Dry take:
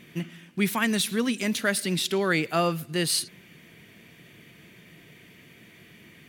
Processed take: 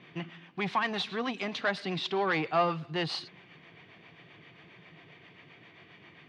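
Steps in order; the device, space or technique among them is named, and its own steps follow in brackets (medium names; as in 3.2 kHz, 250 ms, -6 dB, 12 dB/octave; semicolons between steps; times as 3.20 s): guitar amplifier with harmonic tremolo (harmonic tremolo 7.5 Hz, depth 50%, crossover 400 Hz; saturation -23.5 dBFS, distortion -13 dB; cabinet simulation 95–4300 Hz, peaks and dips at 220 Hz -9 dB, 780 Hz +9 dB, 1.1 kHz +8 dB)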